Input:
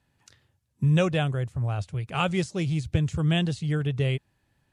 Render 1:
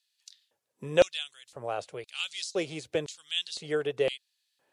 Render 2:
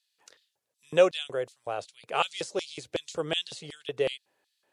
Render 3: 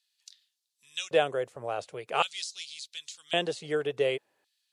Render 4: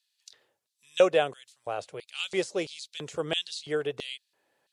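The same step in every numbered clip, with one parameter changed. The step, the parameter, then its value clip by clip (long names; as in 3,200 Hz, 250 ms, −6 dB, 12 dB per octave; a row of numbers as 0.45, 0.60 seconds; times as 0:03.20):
auto-filter high-pass, speed: 0.98, 2.7, 0.45, 1.5 Hertz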